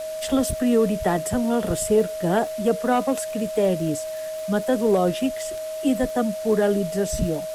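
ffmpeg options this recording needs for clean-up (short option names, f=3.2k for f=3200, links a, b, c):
-af "adeclick=t=4,bandreject=f=630:w=30,afwtdn=0.0079"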